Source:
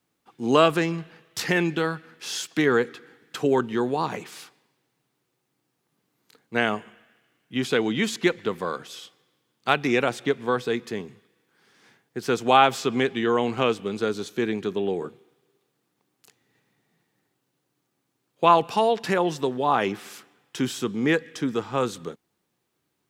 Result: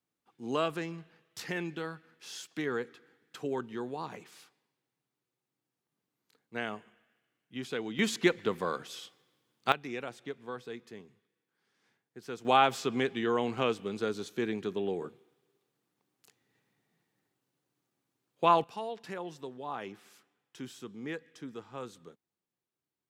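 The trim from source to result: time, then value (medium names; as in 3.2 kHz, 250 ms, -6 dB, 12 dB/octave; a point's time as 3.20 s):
-13 dB
from 7.99 s -4 dB
from 9.72 s -16.5 dB
from 12.45 s -7 dB
from 18.64 s -17 dB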